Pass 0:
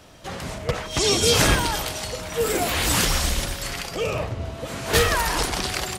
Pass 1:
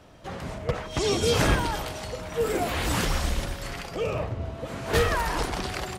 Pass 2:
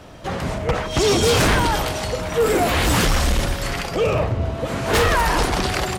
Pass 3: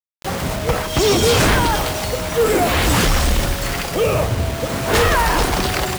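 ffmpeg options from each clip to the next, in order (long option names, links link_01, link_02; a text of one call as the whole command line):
ffmpeg -i in.wav -af "highshelf=frequency=2700:gain=-10,volume=-2dB" out.wav
ffmpeg -i in.wav -af "aeval=exprs='0.316*sin(PI/2*2.82*val(0)/0.316)':channel_layout=same,volume=-2.5dB" out.wav
ffmpeg -i in.wav -af "acrusher=bits=4:mix=0:aa=0.000001,volume=2dB" out.wav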